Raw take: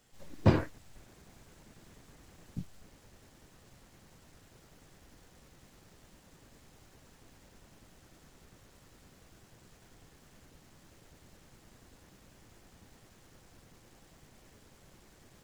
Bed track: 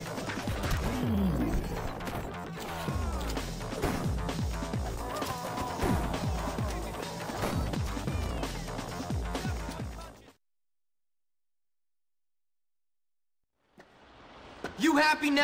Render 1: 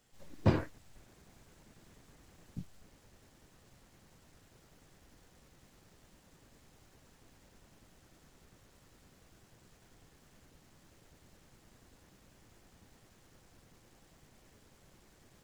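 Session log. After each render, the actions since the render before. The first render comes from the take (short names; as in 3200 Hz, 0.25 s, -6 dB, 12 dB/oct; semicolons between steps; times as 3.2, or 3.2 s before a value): gain -3.5 dB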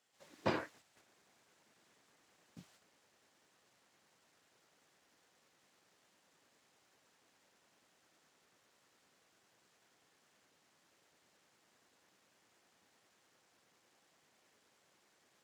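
gate -54 dBFS, range -6 dB; weighting filter A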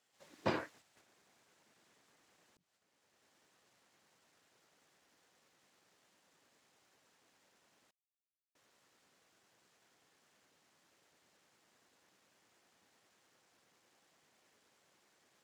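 2.57–3.33 fade in; 7.91–8.55 mute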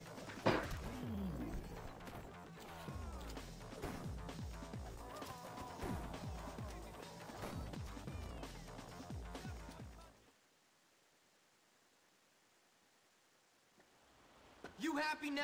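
add bed track -15.5 dB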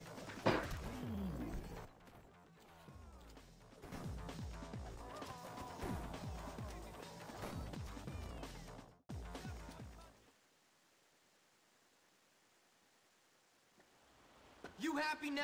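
1.85–3.92 gain -9.5 dB; 4.45–5.39 high shelf 12000 Hz -10 dB; 8.65–9.09 studio fade out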